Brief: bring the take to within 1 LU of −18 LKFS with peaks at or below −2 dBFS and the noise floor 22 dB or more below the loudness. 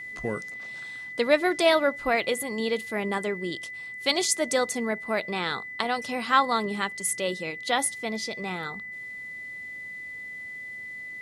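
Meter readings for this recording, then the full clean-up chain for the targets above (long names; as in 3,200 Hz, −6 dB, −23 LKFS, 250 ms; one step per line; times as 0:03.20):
interfering tone 2,000 Hz; level of the tone −36 dBFS; integrated loudness −27.5 LKFS; sample peak −7.0 dBFS; target loudness −18.0 LKFS
→ notch filter 2,000 Hz, Q 30
level +9.5 dB
brickwall limiter −2 dBFS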